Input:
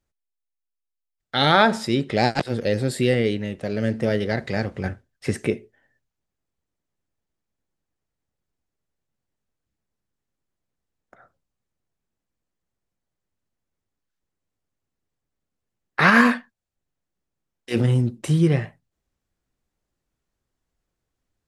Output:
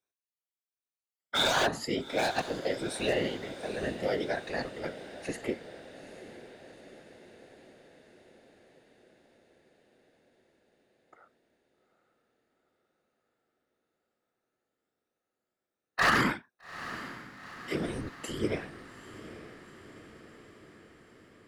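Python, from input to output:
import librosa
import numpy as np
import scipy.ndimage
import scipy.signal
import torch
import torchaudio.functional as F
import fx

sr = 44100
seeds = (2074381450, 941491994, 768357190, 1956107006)

p1 = fx.spec_ripple(x, sr, per_octave=1.6, drift_hz=1.4, depth_db=14)
p2 = scipy.signal.sosfilt(scipy.signal.butter(2, 310.0, 'highpass', fs=sr, output='sos'), p1)
p3 = 10.0 ** (-9.0 / 20.0) * (np.abs((p2 / 10.0 ** (-9.0 / 20.0) + 3.0) % 4.0 - 2.0) - 1.0)
p4 = fx.whisperise(p3, sr, seeds[0])
p5 = p4 + fx.echo_diffused(p4, sr, ms=829, feedback_pct=62, wet_db=-14, dry=0)
y = p5 * 10.0 ** (-8.5 / 20.0)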